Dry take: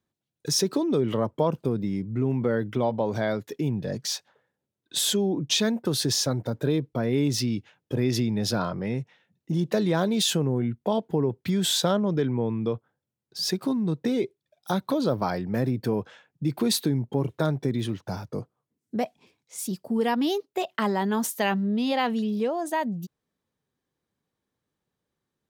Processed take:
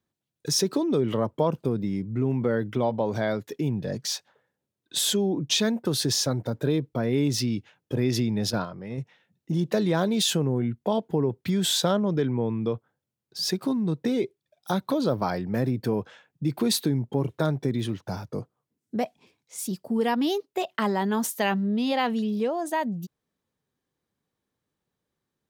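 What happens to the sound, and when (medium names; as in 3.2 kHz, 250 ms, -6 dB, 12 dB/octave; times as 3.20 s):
8.50–8.98 s: gate -27 dBFS, range -8 dB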